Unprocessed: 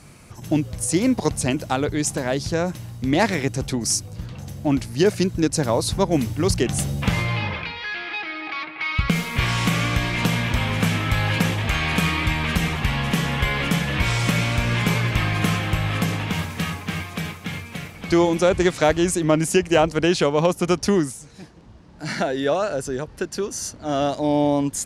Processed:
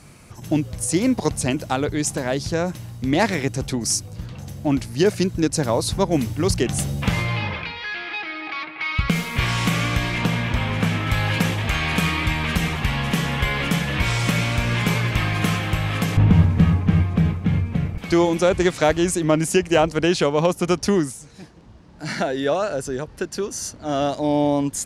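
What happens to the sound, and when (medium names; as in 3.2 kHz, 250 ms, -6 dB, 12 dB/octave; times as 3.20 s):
10.18–11.07 s: treble shelf 4.9 kHz -8.5 dB
16.17–17.98 s: tilt EQ -4.5 dB/octave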